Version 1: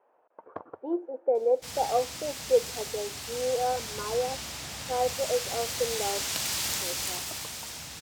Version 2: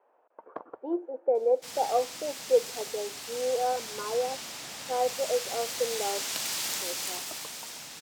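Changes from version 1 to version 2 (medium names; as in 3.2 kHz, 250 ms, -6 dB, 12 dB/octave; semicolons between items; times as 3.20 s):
background: send off; master: add high-pass 210 Hz 12 dB/octave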